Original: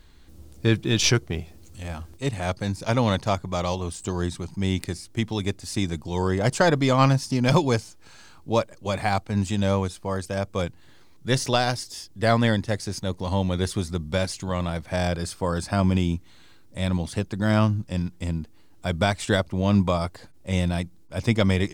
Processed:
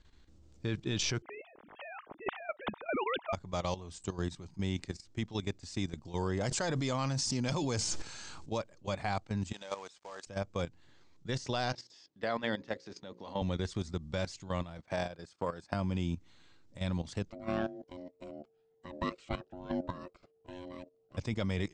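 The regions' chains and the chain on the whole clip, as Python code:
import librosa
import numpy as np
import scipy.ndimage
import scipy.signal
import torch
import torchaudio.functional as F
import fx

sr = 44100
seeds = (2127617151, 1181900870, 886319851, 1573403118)

y = fx.chain(x, sr, fx.sine_speech(),
    fx.lowpass(hz=1300.0, slope=6),
    fx.spectral_comp(ratio=2.0), at=(1.22, 3.33))
y = fx.chain(y, sr, fx.high_shelf(hz=5900.0, db=11.5),
    fx.sustainer(db_per_s=27.0), at=(6.4, 8.58))
y = fx.chain(y, sr, fx.highpass(hz=590.0, slope=12),
    fx.quant_companded(bits=4), at=(9.53, 10.27))
y = fx.chain(y, sr, fx.bandpass_edges(low_hz=240.0, high_hz=4300.0),
    fx.hum_notches(base_hz=60, count=9), at=(11.73, 13.42))
y = fx.chain(y, sr, fx.highpass(hz=250.0, slope=6),
    fx.high_shelf(hz=2300.0, db=-4.0),
    fx.transient(attack_db=10, sustain_db=-10), at=(14.78, 15.74))
y = fx.chain(y, sr, fx.bass_treble(bass_db=-2, treble_db=-11),
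    fx.ring_mod(carrier_hz=450.0),
    fx.notch_cascade(direction='rising', hz=1.1), at=(17.3, 21.17))
y = fx.level_steps(y, sr, step_db=13)
y = scipy.signal.sosfilt(scipy.signal.butter(8, 7900.0, 'lowpass', fs=sr, output='sos'), y)
y = y * 10.0 ** (-6.5 / 20.0)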